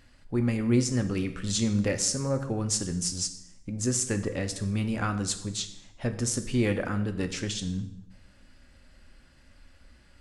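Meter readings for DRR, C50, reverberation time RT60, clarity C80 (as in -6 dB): 7.5 dB, 12.0 dB, 0.80 s, 14.5 dB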